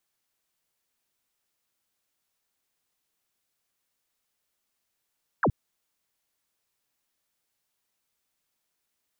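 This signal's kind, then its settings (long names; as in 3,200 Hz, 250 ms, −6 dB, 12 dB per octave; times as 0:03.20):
single falling chirp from 1,800 Hz, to 83 Hz, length 0.07 s sine, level −19 dB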